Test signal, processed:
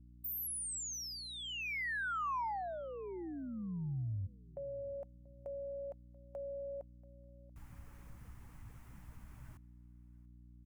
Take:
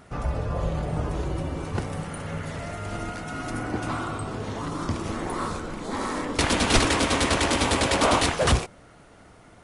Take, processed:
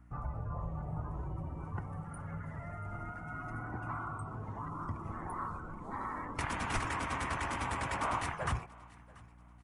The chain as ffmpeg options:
ffmpeg -i in.wav -filter_complex "[0:a]afftdn=noise_reduction=16:noise_floor=-35,equalizer=frequency=125:width_type=o:width=1:gain=5,equalizer=frequency=250:width_type=o:width=1:gain=-4,equalizer=frequency=500:width_type=o:width=1:gain=-8,equalizer=frequency=1000:width_type=o:width=1:gain=7,equalizer=frequency=2000:width_type=o:width=1:gain=4,equalizer=frequency=4000:width_type=o:width=1:gain=-11,acompressor=threshold=-45dB:ratio=1.5,aeval=exprs='val(0)+0.00251*(sin(2*PI*60*n/s)+sin(2*PI*2*60*n/s)/2+sin(2*PI*3*60*n/s)/3+sin(2*PI*4*60*n/s)/4+sin(2*PI*5*60*n/s)/5)':channel_layout=same,asplit=2[link_01][link_02];[link_02]aecho=0:1:685|1370:0.075|0.0217[link_03];[link_01][link_03]amix=inputs=2:normalize=0,volume=-4.5dB" out.wav

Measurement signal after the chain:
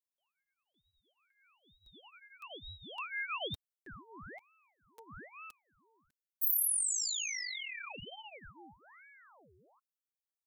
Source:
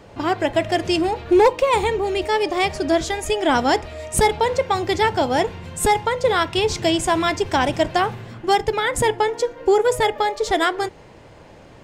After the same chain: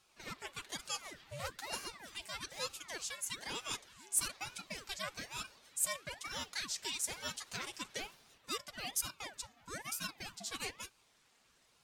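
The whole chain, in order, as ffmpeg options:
ffmpeg -i in.wav -af "aderivative,flanger=delay=3.3:depth=5.6:regen=-8:speed=0.34:shape=sinusoidal,aeval=exprs='val(0)*sin(2*PI*1100*n/s+1100*0.8/1.1*sin(2*PI*1.1*n/s))':channel_layout=same,volume=-2.5dB" out.wav

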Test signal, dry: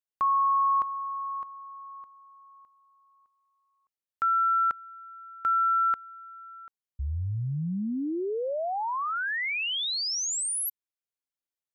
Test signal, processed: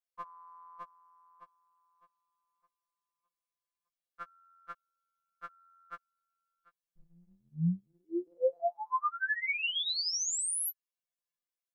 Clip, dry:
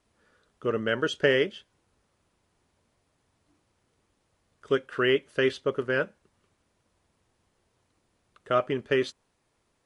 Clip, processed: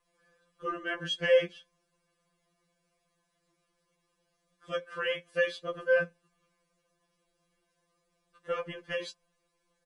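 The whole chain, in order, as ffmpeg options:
ffmpeg -i in.wav -af "aecho=1:1:1.8:0.6,afftfilt=real='re*2.83*eq(mod(b,8),0)':imag='im*2.83*eq(mod(b,8),0)':win_size=2048:overlap=0.75,volume=-2.5dB" out.wav

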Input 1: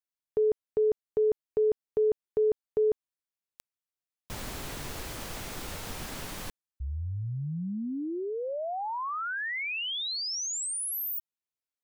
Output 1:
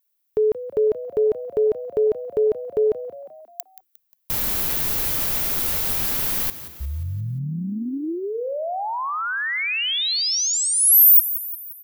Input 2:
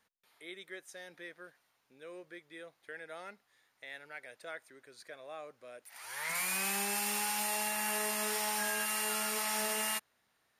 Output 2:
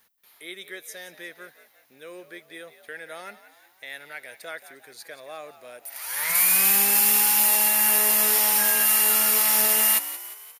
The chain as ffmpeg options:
ffmpeg -i in.wav -filter_complex "[0:a]highshelf=frequency=2500:gain=6,aexciter=amount=3.7:drive=4.6:freq=11000,asplit=2[link_01][link_02];[link_02]asplit=5[link_03][link_04][link_05][link_06][link_07];[link_03]adelay=177,afreqshift=66,volume=-14dB[link_08];[link_04]adelay=354,afreqshift=132,volume=-19.8dB[link_09];[link_05]adelay=531,afreqshift=198,volume=-25.7dB[link_10];[link_06]adelay=708,afreqshift=264,volume=-31.5dB[link_11];[link_07]adelay=885,afreqshift=330,volume=-37.4dB[link_12];[link_08][link_09][link_10][link_11][link_12]amix=inputs=5:normalize=0[link_13];[link_01][link_13]amix=inputs=2:normalize=0,volume=6dB" out.wav

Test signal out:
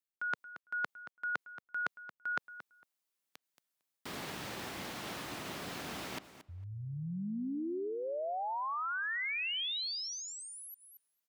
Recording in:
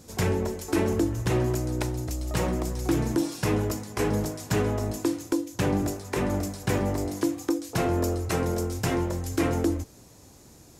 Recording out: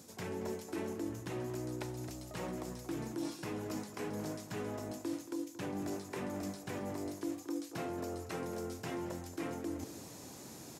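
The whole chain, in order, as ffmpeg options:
ffmpeg -i in.wav -filter_complex "[0:a]areverse,acompressor=threshold=-39dB:ratio=10,areverse,equalizer=frequency=470:width=4.6:gain=-2,asplit=2[link_01][link_02];[link_02]adelay=227,lowpass=frequency=2900:poles=1,volume=-13dB,asplit=2[link_03][link_04];[link_04]adelay=227,lowpass=frequency=2900:poles=1,volume=0.18[link_05];[link_01][link_03][link_05]amix=inputs=3:normalize=0,acrossover=split=5000[link_06][link_07];[link_07]acompressor=threshold=-58dB:ratio=4:attack=1:release=60[link_08];[link_06][link_08]amix=inputs=2:normalize=0,highpass=150,highshelf=frequency=6900:gain=3.5,volume=3.5dB" out.wav

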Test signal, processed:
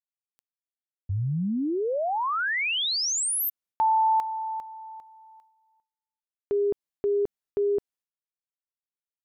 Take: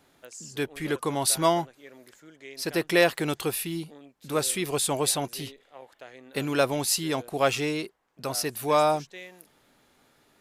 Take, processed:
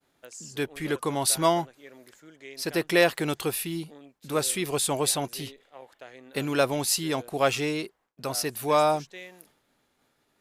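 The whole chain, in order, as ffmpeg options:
ffmpeg -i in.wav -af "agate=range=-33dB:threshold=-56dB:ratio=3:detection=peak" out.wav

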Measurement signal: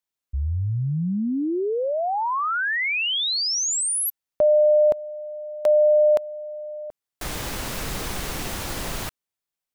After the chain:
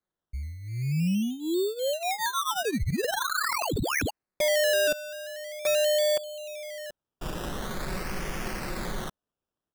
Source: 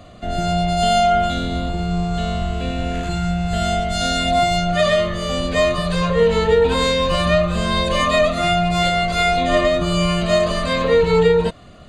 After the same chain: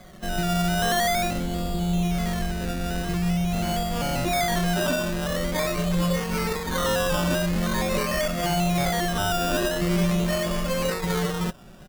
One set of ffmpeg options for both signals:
ffmpeg -i in.wav -af "asoftclip=type=tanh:threshold=-15.5dB,aecho=1:1:5.4:0.74,acrusher=samples=16:mix=1:aa=0.000001:lfo=1:lforange=9.6:lforate=0.45,equalizer=frequency=830:width=1.3:gain=-3.5,volume=-4.5dB" out.wav

